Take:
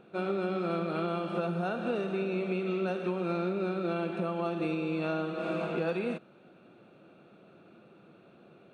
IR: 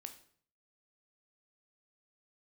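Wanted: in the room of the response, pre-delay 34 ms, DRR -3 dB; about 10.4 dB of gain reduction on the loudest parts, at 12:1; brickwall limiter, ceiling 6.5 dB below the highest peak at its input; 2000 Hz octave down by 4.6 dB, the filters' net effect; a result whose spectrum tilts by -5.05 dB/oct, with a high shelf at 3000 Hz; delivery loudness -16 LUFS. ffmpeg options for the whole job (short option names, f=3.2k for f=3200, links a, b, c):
-filter_complex "[0:a]equalizer=f=2k:t=o:g=-3.5,highshelf=f=3k:g=-8,acompressor=threshold=-38dB:ratio=12,alimiter=level_in=11.5dB:limit=-24dB:level=0:latency=1,volume=-11.5dB,asplit=2[a][b];[1:a]atrim=start_sample=2205,adelay=34[c];[b][c]afir=irnorm=-1:irlink=0,volume=8dB[d];[a][d]amix=inputs=2:normalize=0,volume=24dB"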